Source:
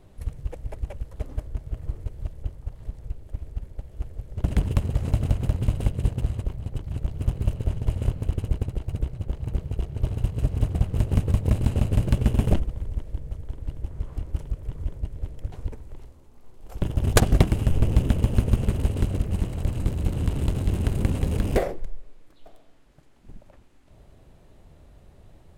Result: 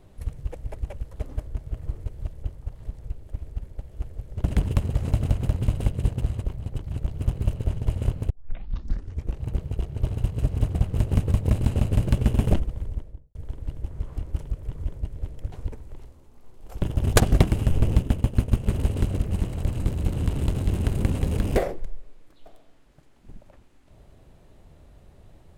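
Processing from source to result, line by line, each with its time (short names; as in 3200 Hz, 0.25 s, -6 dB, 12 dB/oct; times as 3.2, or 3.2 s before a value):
8.3 tape start 1.13 s
12.83–13.35 studio fade out
17.98–18.66 expander -19 dBFS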